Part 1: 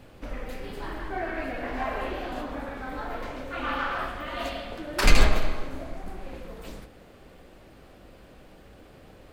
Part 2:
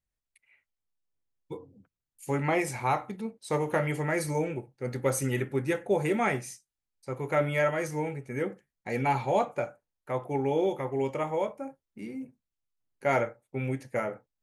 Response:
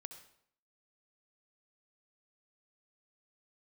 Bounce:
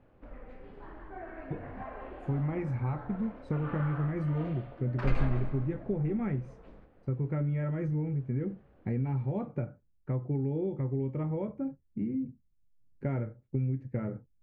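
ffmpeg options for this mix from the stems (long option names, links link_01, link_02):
-filter_complex "[0:a]volume=-11.5dB[link_01];[1:a]asubboost=boost=12:cutoff=210,acompressor=threshold=-27dB:ratio=5,volume=-2.5dB[link_02];[link_01][link_02]amix=inputs=2:normalize=0,lowpass=1600"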